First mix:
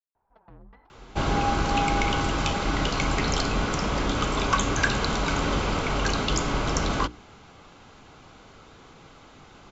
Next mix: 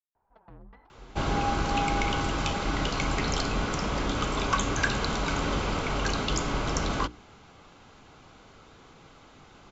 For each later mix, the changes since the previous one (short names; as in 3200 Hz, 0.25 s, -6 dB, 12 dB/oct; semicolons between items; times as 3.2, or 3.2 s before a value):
second sound -3.0 dB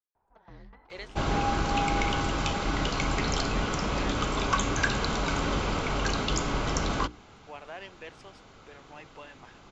speech: unmuted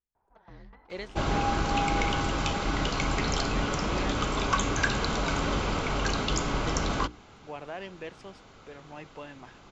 speech: remove HPF 780 Hz 6 dB/oct